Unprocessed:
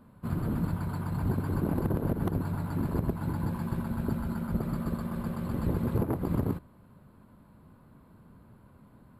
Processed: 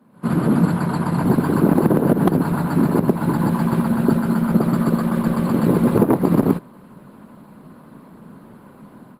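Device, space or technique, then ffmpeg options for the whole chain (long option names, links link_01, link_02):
video call: -af "highpass=frequency=160:width=0.5412,highpass=frequency=160:width=1.3066,highshelf=frequency=12000:gain=-4.5,dynaudnorm=framelen=120:gausssize=3:maxgain=14dB,volume=2.5dB" -ar 48000 -c:a libopus -b:a 20k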